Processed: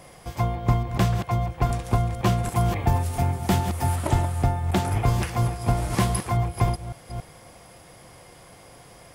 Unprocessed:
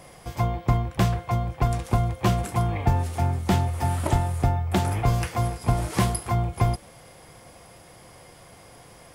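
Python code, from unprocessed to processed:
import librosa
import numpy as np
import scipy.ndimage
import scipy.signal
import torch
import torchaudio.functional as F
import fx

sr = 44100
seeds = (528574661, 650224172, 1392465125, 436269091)

y = fx.reverse_delay(x, sr, ms=277, wet_db=-9.0)
y = fx.high_shelf(y, sr, hz=9600.0, db=9.0, at=(2.51, 3.96))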